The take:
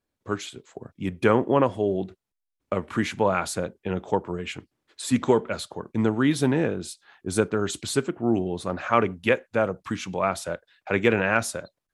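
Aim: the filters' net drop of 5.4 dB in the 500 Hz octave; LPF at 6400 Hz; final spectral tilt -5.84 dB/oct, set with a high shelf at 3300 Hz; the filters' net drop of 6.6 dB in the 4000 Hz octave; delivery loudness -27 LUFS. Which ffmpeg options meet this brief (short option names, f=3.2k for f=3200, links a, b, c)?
-af "lowpass=6.4k,equalizer=f=500:t=o:g=-6.5,highshelf=f=3.3k:g=-5.5,equalizer=f=4k:t=o:g=-4,volume=1.5dB"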